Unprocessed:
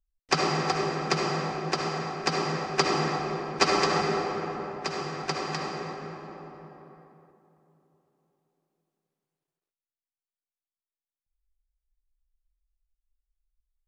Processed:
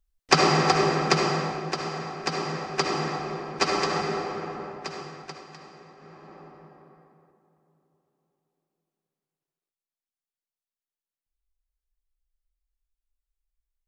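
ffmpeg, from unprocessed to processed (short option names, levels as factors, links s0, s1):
-af "volume=6.68,afade=t=out:st=0.94:d=0.79:silence=0.421697,afade=t=out:st=4.67:d=0.78:silence=0.237137,afade=t=in:st=5.95:d=0.45:silence=0.298538"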